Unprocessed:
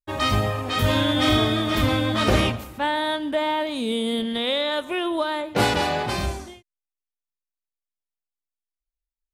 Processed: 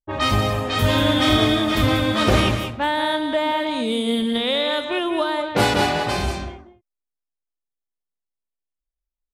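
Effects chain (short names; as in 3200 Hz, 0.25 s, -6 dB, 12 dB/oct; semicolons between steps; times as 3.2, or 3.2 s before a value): echo 0.188 s -7.5 dB; low-pass opened by the level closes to 720 Hz, open at -20 dBFS; gain +2 dB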